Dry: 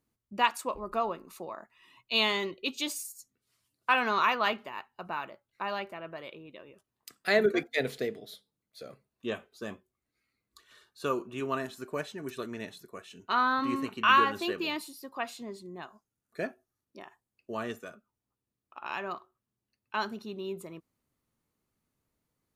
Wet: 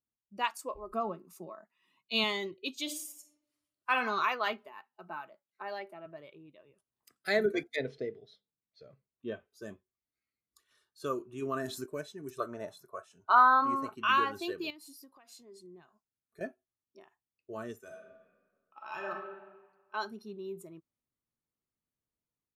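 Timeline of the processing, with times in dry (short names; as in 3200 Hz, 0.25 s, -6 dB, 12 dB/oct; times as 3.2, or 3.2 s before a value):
0.93–2.24 resonant low shelf 130 Hz -10.5 dB, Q 3
2.82–3.94 reverb throw, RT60 1.1 s, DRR 6 dB
4.66–6.06 steep high-pass 150 Hz
6.64–7.16 three-band squash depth 70%
7.76–9.48 air absorption 150 m
11.42–11.86 fast leveller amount 50%
12.4–13.95 band shelf 900 Hz +12.5 dB
14.7–16.41 compressor 10:1, threshold -42 dBFS
17.8–19.11 reverb throw, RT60 1.7 s, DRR -2 dB
whole clip: spectral noise reduction 10 dB; AGC gain up to 5 dB; gain -8.5 dB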